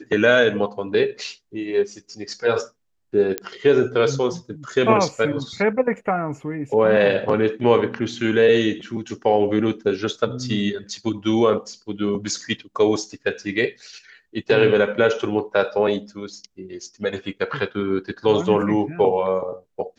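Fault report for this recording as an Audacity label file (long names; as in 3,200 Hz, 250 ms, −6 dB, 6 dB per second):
3.380000	3.380000	click −8 dBFS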